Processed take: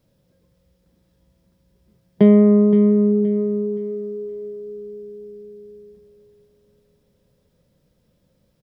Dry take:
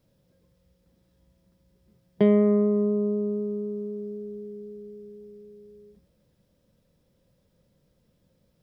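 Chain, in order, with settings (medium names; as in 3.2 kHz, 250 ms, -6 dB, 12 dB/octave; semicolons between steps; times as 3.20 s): dynamic bell 200 Hz, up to +6 dB, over -36 dBFS, Q 0.8; on a send: feedback delay 521 ms, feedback 35%, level -11.5 dB; on the sum: trim +3 dB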